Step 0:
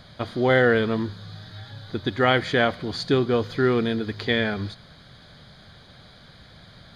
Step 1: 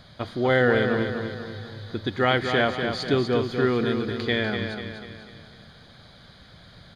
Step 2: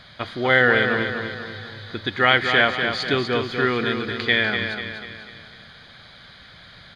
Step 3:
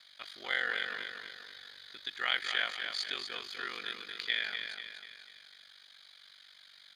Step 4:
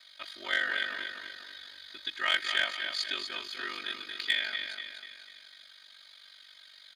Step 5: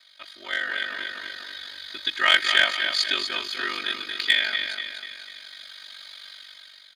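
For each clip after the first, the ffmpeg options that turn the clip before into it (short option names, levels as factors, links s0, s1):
-af "aecho=1:1:245|490|735|980|1225|1470:0.473|0.227|0.109|0.0523|0.0251|0.0121,volume=0.794"
-af "equalizer=f=2200:w=0.56:g=11.5,volume=0.794"
-af "aderivative,aeval=exprs='val(0)*sin(2*PI*24*n/s)':c=same"
-filter_complex "[0:a]aecho=1:1:3.2:0.95,asplit=2[s0][s1];[s1]acrusher=bits=2:mix=0:aa=0.5,volume=0.299[s2];[s0][s2]amix=inputs=2:normalize=0"
-af "dynaudnorm=f=450:g=5:m=4.47"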